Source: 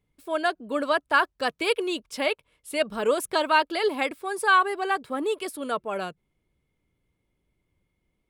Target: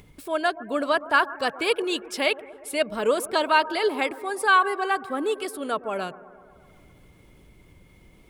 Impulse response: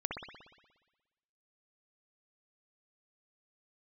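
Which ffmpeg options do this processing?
-filter_complex "[0:a]acompressor=mode=upward:threshold=-36dB:ratio=2.5,asplit=2[a][b];[1:a]atrim=start_sample=2205,asetrate=22491,aresample=44100[c];[b][c]afir=irnorm=-1:irlink=0,volume=-20.5dB[d];[a][d]amix=inputs=2:normalize=0,asettb=1/sr,asplit=3[e][f][g];[e]atrim=end=1.824[h];[f]atrim=start=1.82:end=2.72,asetpts=PTS-STARTPTS,afade=t=in:d=0.004:c=qsin,afade=t=out:st=0.896:d=0.004:c=qsin,adynamicequalizer=threshold=0.0158:dfrequency=1800:dqfactor=0.7:tfrequency=1800:tqfactor=0.7:attack=5:release=100:ratio=0.375:range=2:mode=boostabove:tftype=highshelf[i];[g]atrim=start=2.716[j];[h][i]acrossfade=d=0.004:c1=hsin:c2=qsin[k];[k][j]acrossfade=d=0.004:c1=qsin:c2=hsin"

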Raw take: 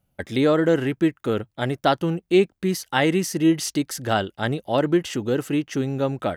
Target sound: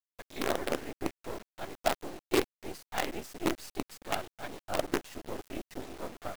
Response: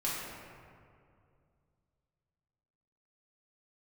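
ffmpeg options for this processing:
-af "afftfilt=real='hypot(re,im)*cos(2*PI*random(0))':imag='hypot(re,im)*sin(2*PI*random(1))':win_size=512:overlap=0.75,highpass=f=260:w=0.5412,highpass=f=260:w=1.3066,equalizer=f=470:t=q:w=4:g=-3,equalizer=f=710:t=q:w=4:g=6,equalizer=f=1.4k:t=q:w=4:g=-4,equalizer=f=3.2k:t=q:w=4:g=-5,equalizer=f=5.9k:t=q:w=4:g=-7,lowpass=f=8.4k:w=0.5412,lowpass=f=8.4k:w=1.3066,acrusher=bits=4:dc=4:mix=0:aa=0.000001,volume=-5dB"

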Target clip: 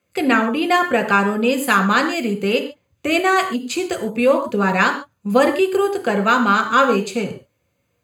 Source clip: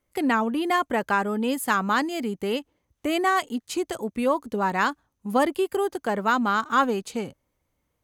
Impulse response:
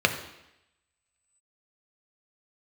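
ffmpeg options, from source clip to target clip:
-filter_complex "[0:a]crystalizer=i=1.5:c=0[a];[1:a]atrim=start_sample=2205,atrim=end_sample=6615[b];[a][b]afir=irnorm=-1:irlink=0,volume=-7dB"

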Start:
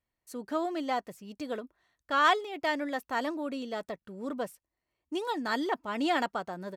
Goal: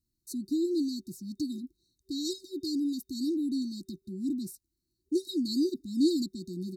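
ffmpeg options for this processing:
-af "afftfilt=real='re*(1-between(b*sr/4096,380,3700))':imag='im*(1-between(b*sr/4096,380,3700))':win_size=4096:overlap=0.75,volume=6.5dB"

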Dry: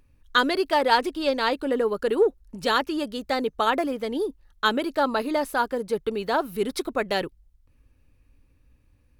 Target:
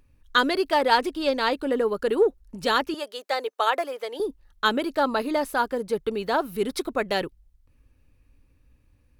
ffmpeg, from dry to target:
-filter_complex "[0:a]asettb=1/sr,asplit=3[a][b][c];[a]atrim=end=2.944[d];[b]atrim=start=2.94:end=4.2,asetpts=PTS-STARTPTS,afade=t=in:d=0.004:c=qsin,afade=t=out:st=1.256:d=0.004:c=qsin,highpass=f=450:w=0.5412,highpass=f=450:w=1.3066[e];[c]atrim=start=4.196[f];[d][e]acrossfade=d=0.004:c1=hsin:c2=qsin[g];[g][f]acrossfade=d=0.004:c1=qsin:c2=hsin"

